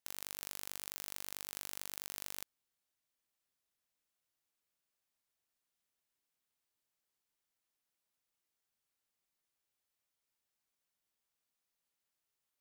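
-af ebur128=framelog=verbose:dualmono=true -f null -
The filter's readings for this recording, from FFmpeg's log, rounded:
Integrated loudness:
  I:         -40.3 LUFS
  Threshold: -50.3 LUFS
Loudness range:
  LRA:         9.8 LU
  Threshold: -63.8 LUFS
  LRA low:   -50.8 LUFS
  LRA high:  -41.0 LUFS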